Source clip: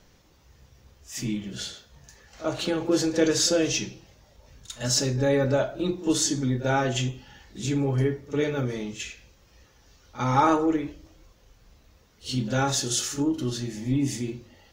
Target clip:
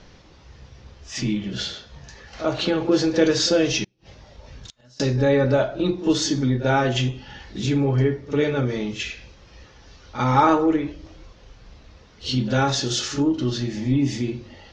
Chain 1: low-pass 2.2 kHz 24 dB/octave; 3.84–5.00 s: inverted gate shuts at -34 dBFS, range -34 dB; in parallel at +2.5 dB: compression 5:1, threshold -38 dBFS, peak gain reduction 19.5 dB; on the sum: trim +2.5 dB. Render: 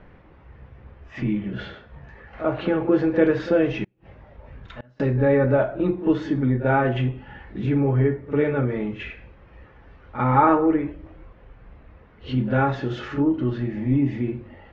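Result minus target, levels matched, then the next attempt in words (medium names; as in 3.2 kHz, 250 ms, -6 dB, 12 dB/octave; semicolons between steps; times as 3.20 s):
4 kHz band -15.5 dB
low-pass 5.4 kHz 24 dB/octave; 3.84–5.00 s: inverted gate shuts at -34 dBFS, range -34 dB; in parallel at +2.5 dB: compression 5:1, threshold -38 dBFS, peak gain reduction 19.5 dB; on the sum: trim +2.5 dB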